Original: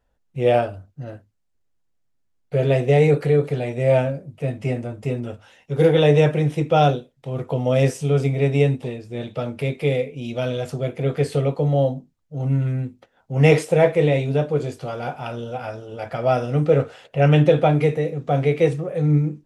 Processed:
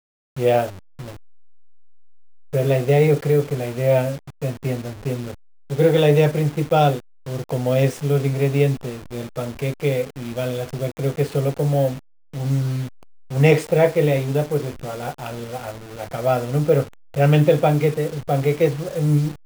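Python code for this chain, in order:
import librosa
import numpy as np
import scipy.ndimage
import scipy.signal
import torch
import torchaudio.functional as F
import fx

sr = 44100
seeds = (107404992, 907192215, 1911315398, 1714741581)

y = fx.delta_hold(x, sr, step_db=-31.5)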